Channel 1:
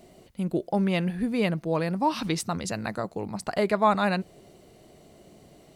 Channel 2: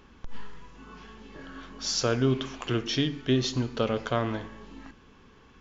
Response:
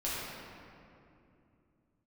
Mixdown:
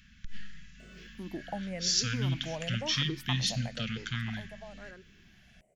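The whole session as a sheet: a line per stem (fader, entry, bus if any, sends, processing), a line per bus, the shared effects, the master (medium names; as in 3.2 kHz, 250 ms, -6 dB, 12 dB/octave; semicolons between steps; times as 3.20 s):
3.43 s -8.5 dB -> 4.10 s -19.5 dB, 0.80 s, no send, drifting ripple filter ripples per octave 0.53, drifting -1 Hz, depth 17 dB; peaking EQ 4 kHz -11.5 dB 1.2 oct; compression, threshold -25 dBFS, peak gain reduction 11.5 dB
+2.0 dB, 0.00 s, no send, elliptic band-stop 200–1700 Hz, stop band 40 dB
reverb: none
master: bass shelf 190 Hz -4.5 dB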